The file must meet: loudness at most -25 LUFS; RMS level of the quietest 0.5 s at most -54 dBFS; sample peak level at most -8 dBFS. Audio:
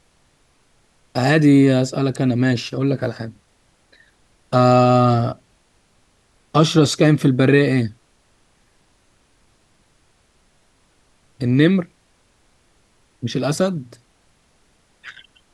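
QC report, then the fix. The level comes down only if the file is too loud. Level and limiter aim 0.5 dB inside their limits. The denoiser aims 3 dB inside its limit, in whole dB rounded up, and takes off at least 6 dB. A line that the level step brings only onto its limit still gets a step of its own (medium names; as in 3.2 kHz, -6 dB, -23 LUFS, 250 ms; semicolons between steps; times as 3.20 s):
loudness -17.0 LUFS: fail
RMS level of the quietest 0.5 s -60 dBFS: pass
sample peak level -2.0 dBFS: fail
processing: trim -8.5 dB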